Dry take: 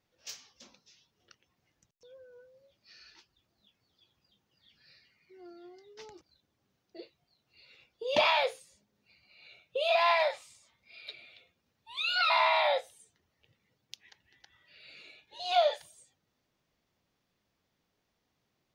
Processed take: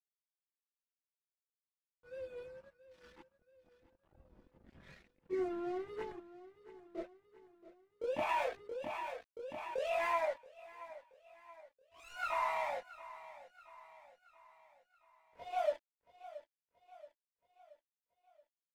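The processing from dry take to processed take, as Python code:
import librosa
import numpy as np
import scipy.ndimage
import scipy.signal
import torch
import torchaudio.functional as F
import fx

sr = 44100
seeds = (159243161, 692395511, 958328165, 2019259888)

p1 = fx.recorder_agc(x, sr, target_db=-23.0, rise_db_per_s=8.3, max_gain_db=30)
p2 = fx.env_lowpass(p1, sr, base_hz=310.0, full_db=-22.5)
p3 = scipy.signal.sosfilt(scipy.signal.butter(4, 2300.0, 'lowpass', fs=sr, output='sos'), p2)
p4 = fx.low_shelf(p3, sr, hz=280.0, db=6.5)
p5 = np.sign(p4) * np.maximum(np.abs(p4) - 10.0 ** (-42.0 / 20.0), 0.0)
p6 = fx.chorus_voices(p5, sr, voices=6, hz=0.14, base_ms=24, depth_ms=3.2, mix_pct=65)
p7 = p6 + fx.echo_feedback(p6, sr, ms=677, feedback_pct=50, wet_db=-16.0, dry=0)
p8 = fx.env_flatten(p7, sr, amount_pct=50, at=(8.29, 10.17))
y = F.gain(torch.from_numpy(p8), -6.0).numpy()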